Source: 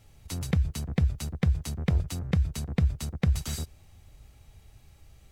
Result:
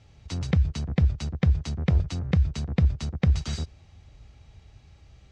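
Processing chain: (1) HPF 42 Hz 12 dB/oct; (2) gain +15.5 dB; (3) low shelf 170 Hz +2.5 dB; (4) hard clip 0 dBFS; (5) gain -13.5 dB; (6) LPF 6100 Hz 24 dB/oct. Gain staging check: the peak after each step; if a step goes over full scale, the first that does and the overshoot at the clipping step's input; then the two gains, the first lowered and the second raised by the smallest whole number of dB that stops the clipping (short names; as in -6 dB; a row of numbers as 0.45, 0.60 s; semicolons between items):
-13.5, +2.0, +3.0, 0.0, -13.5, -13.0 dBFS; step 2, 3.0 dB; step 2 +12.5 dB, step 5 -10.5 dB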